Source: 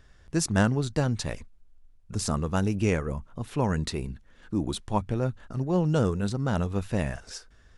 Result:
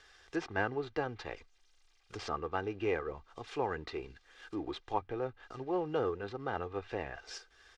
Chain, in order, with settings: CVSD 64 kbps; treble ducked by the level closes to 2500 Hz, closed at -25 dBFS; three-band isolator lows -15 dB, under 340 Hz, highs -23 dB, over 6600 Hz; comb 2.5 ms, depth 58%; mismatched tape noise reduction encoder only; gain -4.5 dB

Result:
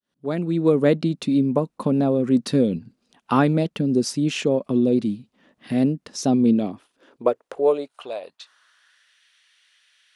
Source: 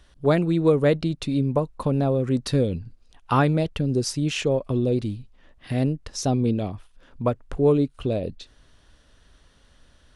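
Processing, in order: opening faded in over 0.82 s; high-pass sweep 210 Hz -> 2200 Hz, 6.52–9.21

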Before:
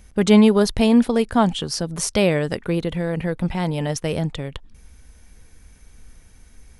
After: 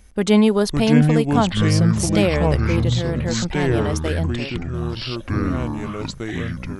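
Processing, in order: bell 130 Hz -14.5 dB 0.33 oct; echoes that change speed 0.486 s, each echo -6 st, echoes 3; gain -1 dB

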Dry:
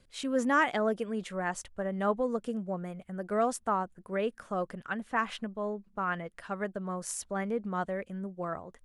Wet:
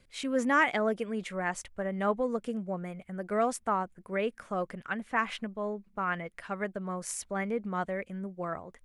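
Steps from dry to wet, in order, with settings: bell 2200 Hz +7 dB 0.4 oct

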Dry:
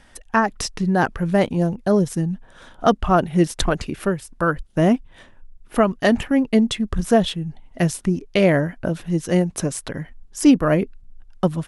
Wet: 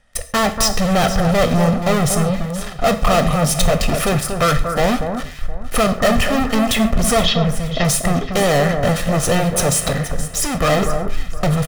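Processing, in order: 3.29–3.83 fixed phaser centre 360 Hz, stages 6; sample leveller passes 5; soft clip -15.5 dBFS, distortion -10 dB; 7.21–7.85 steep low-pass 5700 Hz; 9.9–10.59 compressor 3:1, threshold -21 dBFS, peak gain reduction 3.5 dB; comb 1.6 ms, depth 56%; echo with dull and thin repeats by turns 0.237 s, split 1600 Hz, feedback 50%, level -6.5 dB; non-linear reverb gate 0.17 s falling, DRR 8 dB

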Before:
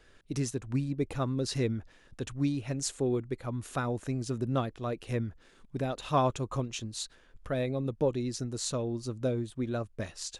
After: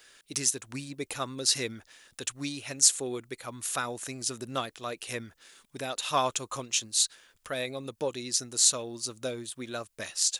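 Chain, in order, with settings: tilt +4.5 dB/oct; gain +1.5 dB

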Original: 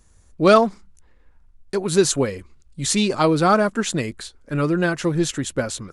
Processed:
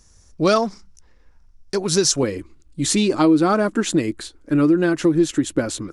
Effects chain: bell 5500 Hz +14 dB 0.44 oct, from 2.23 s 310 Hz; compressor 2.5:1, threshold -16 dBFS, peak gain reduction 7.5 dB; gain +1 dB

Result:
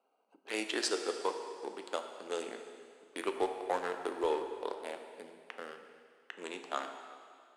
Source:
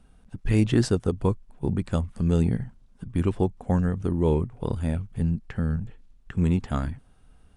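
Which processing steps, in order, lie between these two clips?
Wiener smoothing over 25 samples; Bessel high-pass 670 Hz, order 6; bell 4300 Hz +3.5 dB 1.4 oct; 3.15–4.26 sample leveller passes 1; plate-style reverb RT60 2.1 s, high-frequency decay 1×, DRR 5.5 dB

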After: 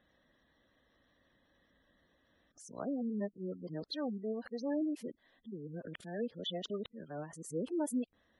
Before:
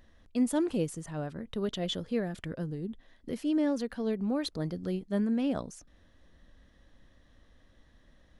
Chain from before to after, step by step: whole clip reversed; HPF 300 Hz 6 dB/oct; spectral gate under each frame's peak -20 dB strong; gain -4 dB

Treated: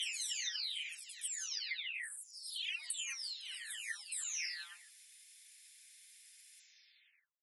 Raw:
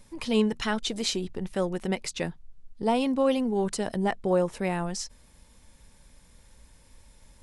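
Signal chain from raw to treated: spectral delay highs early, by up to 0.829 s; steep high-pass 2000 Hz 36 dB/oct; compressor 10:1, threshold -41 dBFS, peak gain reduction 11.5 dB; gain +4.5 dB

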